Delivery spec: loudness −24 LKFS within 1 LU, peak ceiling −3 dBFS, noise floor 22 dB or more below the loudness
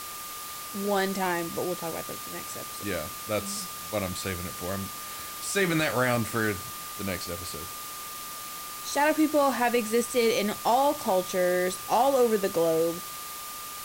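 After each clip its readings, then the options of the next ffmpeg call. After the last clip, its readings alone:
interfering tone 1,200 Hz; level of the tone −41 dBFS; background noise floor −39 dBFS; target noise floor −50 dBFS; integrated loudness −28.0 LKFS; sample peak −13.5 dBFS; target loudness −24.0 LKFS
→ -af "bandreject=frequency=1200:width=30"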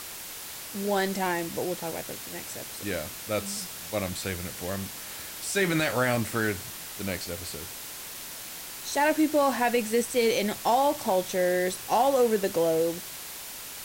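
interfering tone none found; background noise floor −40 dBFS; target noise floor −51 dBFS
→ -af "afftdn=noise_reduction=11:noise_floor=-40"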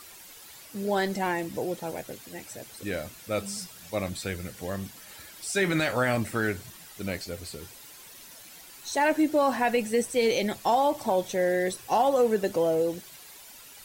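background noise floor −48 dBFS; target noise floor −50 dBFS
→ -af "afftdn=noise_reduction=6:noise_floor=-48"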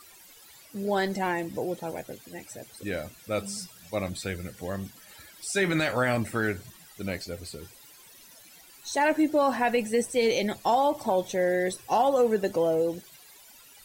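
background noise floor −53 dBFS; integrated loudness −27.5 LKFS; sample peak −14.0 dBFS; target loudness −24.0 LKFS
→ -af "volume=3.5dB"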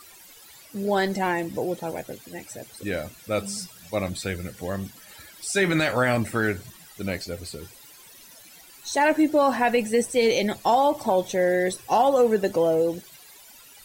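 integrated loudness −24.0 LKFS; sample peak −10.5 dBFS; background noise floor −49 dBFS

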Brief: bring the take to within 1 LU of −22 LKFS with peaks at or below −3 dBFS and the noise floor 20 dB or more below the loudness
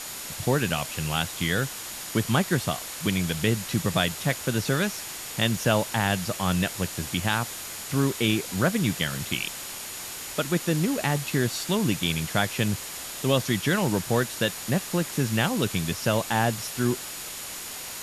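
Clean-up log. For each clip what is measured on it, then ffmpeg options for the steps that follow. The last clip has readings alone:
interfering tone 6,900 Hz; level of the tone −45 dBFS; background noise floor −37 dBFS; target noise floor −47 dBFS; integrated loudness −26.5 LKFS; sample peak −8.5 dBFS; target loudness −22.0 LKFS
→ -af "bandreject=frequency=6900:width=30"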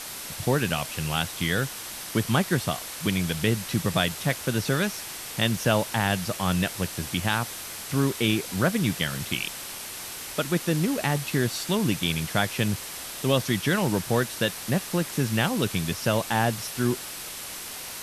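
interfering tone none found; background noise floor −37 dBFS; target noise floor −47 dBFS
→ -af "afftdn=noise_reduction=10:noise_floor=-37"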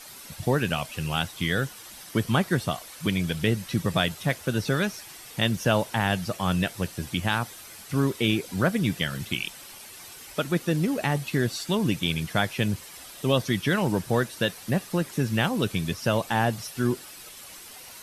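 background noise floor −45 dBFS; target noise floor −47 dBFS
→ -af "afftdn=noise_reduction=6:noise_floor=-45"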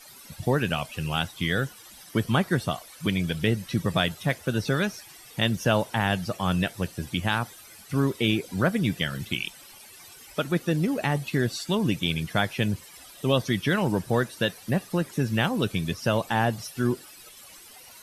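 background noise floor −48 dBFS; integrated loudness −27.0 LKFS; sample peak −9.0 dBFS; target loudness −22.0 LKFS
→ -af "volume=5dB"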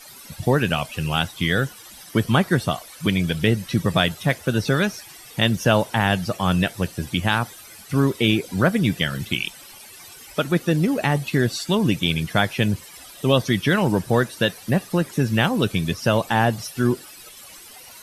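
integrated loudness −22.0 LKFS; sample peak −4.0 dBFS; background noise floor −43 dBFS

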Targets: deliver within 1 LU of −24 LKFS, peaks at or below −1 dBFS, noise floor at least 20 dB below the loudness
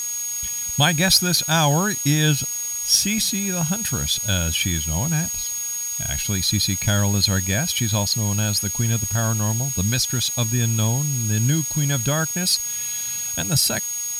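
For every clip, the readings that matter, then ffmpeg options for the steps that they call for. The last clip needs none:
interfering tone 6,600 Hz; level of the tone −25 dBFS; background noise floor −27 dBFS; target noise floor −40 dBFS; integrated loudness −20.0 LKFS; sample peak −4.0 dBFS; target loudness −24.0 LKFS
→ -af "bandreject=frequency=6600:width=30"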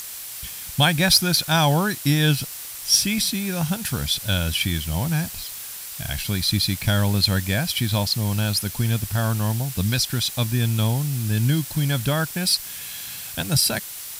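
interfering tone none found; background noise floor −35 dBFS; target noise floor −42 dBFS
→ -af "afftdn=noise_reduction=7:noise_floor=-35"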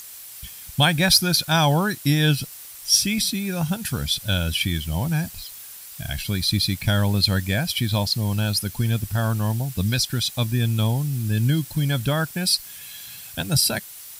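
background noise floor −40 dBFS; target noise floor −42 dBFS
→ -af "afftdn=noise_reduction=6:noise_floor=-40"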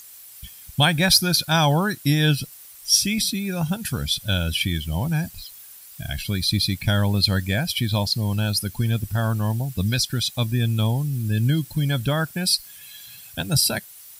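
background noise floor −44 dBFS; integrated loudness −22.0 LKFS; sample peak −4.5 dBFS; target loudness −24.0 LKFS
→ -af "volume=-2dB"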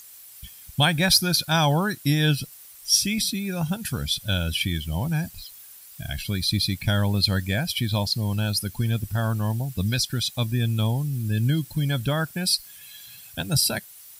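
integrated loudness −24.0 LKFS; sample peak −6.5 dBFS; background noise floor −46 dBFS

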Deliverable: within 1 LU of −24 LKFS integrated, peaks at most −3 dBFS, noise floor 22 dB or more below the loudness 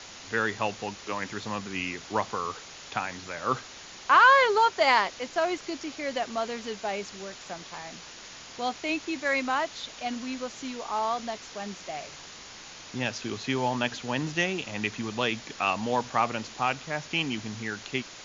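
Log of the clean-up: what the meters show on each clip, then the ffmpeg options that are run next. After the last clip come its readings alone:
background noise floor −46 dBFS; target noise floor −50 dBFS; integrated loudness −28.0 LKFS; sample peak −8.5 dBFS; target loudness −24.0 LKFS
→ -af "afftdn=noise_reduction=6:noise_floor=-46"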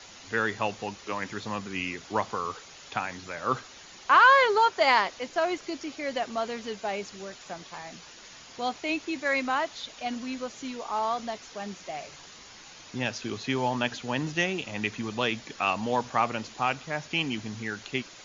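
background noise floor −49 dBFS; target noise floor −50 dBFS
→ -af "afftdn=noise_reduction=6:noise_floor=-49"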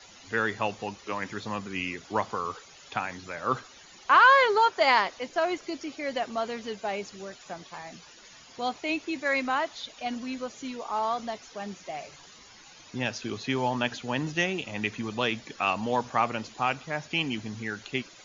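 background noise floor −52 dBFS; integrated loudness −28.0 LKFS; sample peak −8.5 dBFS; target loudness −24.0 LKFS
→ -af "volume=4dB"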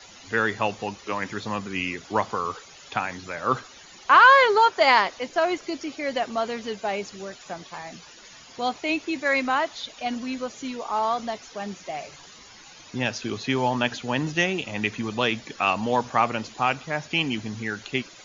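integrated loudness −24.0 LKFS; sample peak −4.5 dBFS; background noise floor −48 dBFS

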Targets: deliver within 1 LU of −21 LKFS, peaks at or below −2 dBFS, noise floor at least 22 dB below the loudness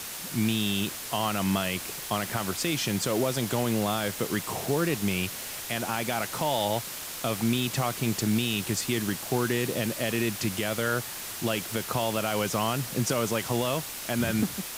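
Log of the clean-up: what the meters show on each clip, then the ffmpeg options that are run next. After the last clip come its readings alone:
background noise floor −38 dBFS; target noise floor −50 dBFS; integrated loudness −28.0 LKFS; sample peak −14.5 dBFS; target loudness −21.0 LKFS
→ -af "afftdn=noise_reduction=12:noise_floor=-38"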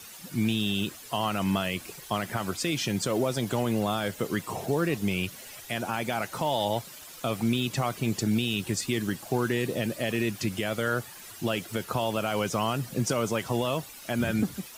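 background noise floor −46 dBFS; target noise floor −51 dBFS
→ -af "afftdn=noise_reduction=6:noise_floor=-46"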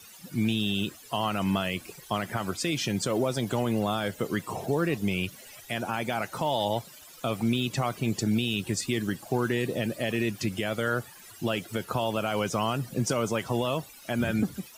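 background noise floor −50 dBFS; target noise floor −52 dBFS
→ -af "afftdn=noise_reduction=6:noise_floor=-50"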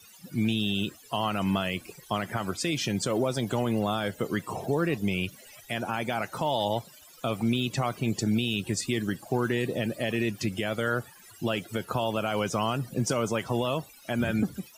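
background noise floor −53 dBFS; integrated loudness −29.5 LKFS; sample peak −15.5 dBFS; target loudness −21.0 LKFS
→ -af "volume=8.5dB"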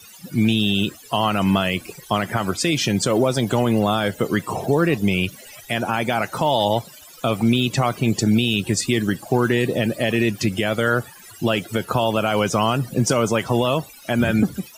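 integrated loudness −21.0 LKFS; sample peak −7.0 dBFS; background noise floor −44 dBFS

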